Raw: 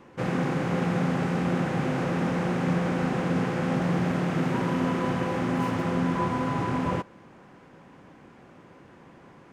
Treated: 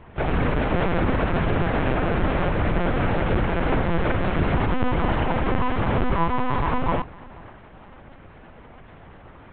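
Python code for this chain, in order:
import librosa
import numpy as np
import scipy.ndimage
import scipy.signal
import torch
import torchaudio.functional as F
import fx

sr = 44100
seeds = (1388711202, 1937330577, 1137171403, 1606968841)

y = fx.low_shelf(x, sr, hz=110.0, db=-11.0)
y = fx.hum_notches(y, sr, base_hz=60, count=4)
y = fx.echo_feedback(y, sr, ms=490, feedback_pct=22, wet_db=-23.0)
y = fx.lpc_vocoder(y, sr, seeds[0], excitation='pitch_kept', order=8)
y = y * librosa.db_to_amplitude(7.5)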